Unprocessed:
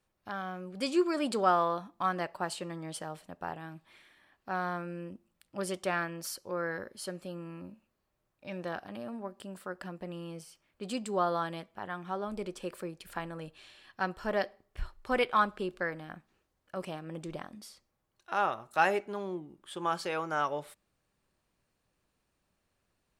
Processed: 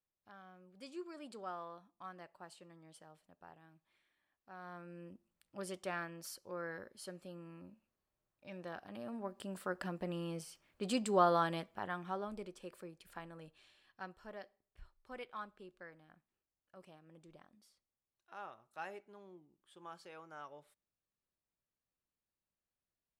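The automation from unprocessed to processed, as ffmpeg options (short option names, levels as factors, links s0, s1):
-af "volume=1.06,afade=t=in:st=4.56:d=0.56:silence=0.316228,afade=t=in:st=8.76:d=0.9:silence=0.334965,afade=t=out:st=11.58:d=0.93:silence=0.266073,afade=t=out:st=13.54:d=0.86:silence=0.375837"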